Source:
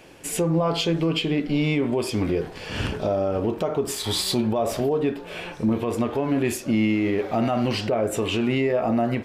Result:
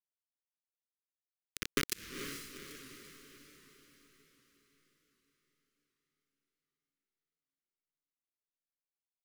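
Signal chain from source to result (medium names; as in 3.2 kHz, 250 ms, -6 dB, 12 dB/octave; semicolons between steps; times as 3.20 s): resonances exaggerated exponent 1.5; Doppler pass-by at 1.91 s, 29 m/s, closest 2 m; Chebyshev high-pass 240 Hz, order 5; peaking EQ 2 kHz -5 dB 0.73 oct; comb 2.3 ms, depth 63%; compression 12:1, threshold -41 dBFS, peak gain reduction 19.5 dB; word length cut 6-bit, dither none; Butterworth band-stop 770 Hz, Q 0.7; echo that smears into a reverb 454 ms, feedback 52%, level -7 dB; warped record 78 rpm, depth 100 cents; trim +15 dB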